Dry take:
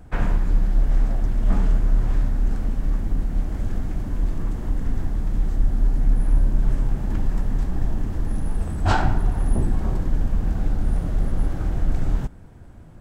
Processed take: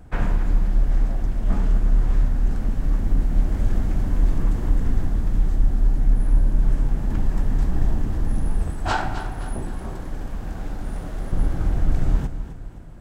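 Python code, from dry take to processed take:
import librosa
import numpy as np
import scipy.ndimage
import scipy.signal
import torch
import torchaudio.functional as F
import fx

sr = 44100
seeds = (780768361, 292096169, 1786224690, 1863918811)

y = fx.rider(x, sr, range_db=10, speed_s=2.0)
y = fx.low_shelf(y, sr, hz=290.0, db=-10.0, at=(8.7, 11.33))
y = fx.echo_feedback(y, sr, ms=261, feedback_pct=42, wet_db=-11.5)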